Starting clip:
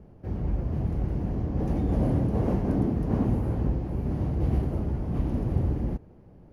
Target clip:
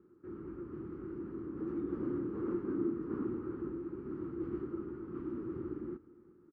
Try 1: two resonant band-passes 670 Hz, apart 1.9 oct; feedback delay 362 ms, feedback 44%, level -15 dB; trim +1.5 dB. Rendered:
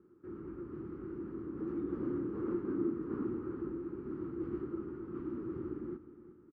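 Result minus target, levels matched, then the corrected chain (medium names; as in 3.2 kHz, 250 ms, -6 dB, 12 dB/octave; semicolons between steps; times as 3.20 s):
echo-to-direct +7 dB
two resonant band-passes 670 Hz, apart 1.9 oct; feedback delay 362 ms, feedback 44%, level -22 dB; trim +1.5 dB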